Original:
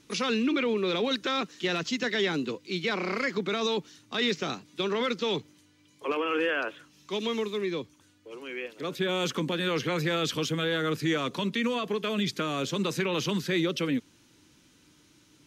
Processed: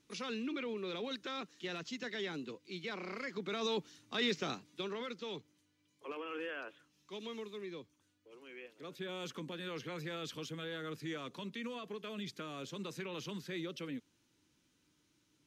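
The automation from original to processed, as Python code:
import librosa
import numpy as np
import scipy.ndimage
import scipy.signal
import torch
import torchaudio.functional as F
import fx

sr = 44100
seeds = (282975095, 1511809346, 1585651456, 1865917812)

y = fx.gain(x, sr, db=fx.line((3.26, -13.0), (3.76, -6.5), (4.54, -6.5), (5.06, -14.5)))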